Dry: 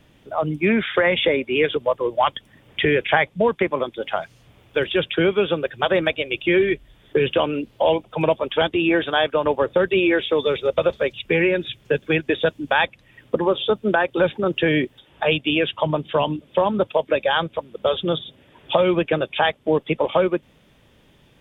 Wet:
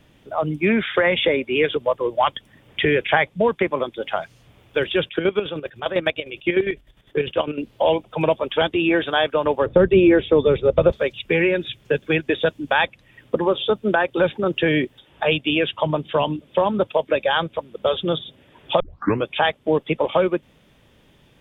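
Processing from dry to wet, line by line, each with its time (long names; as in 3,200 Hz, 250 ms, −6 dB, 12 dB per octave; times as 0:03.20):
0:05.05–0:07.62: square-wave tremolo 9.9 Hz, depth 65%, duty 40%
0:09.66–0:10.92: spectral tilt −3.5 dB per octave
0:18.80: tape start 0.46 s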